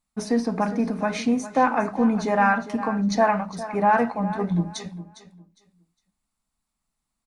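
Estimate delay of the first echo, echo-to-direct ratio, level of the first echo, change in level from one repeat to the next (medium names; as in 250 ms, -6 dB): 407 ms, -13.5 dB, -14.0 dB, -13.0 dB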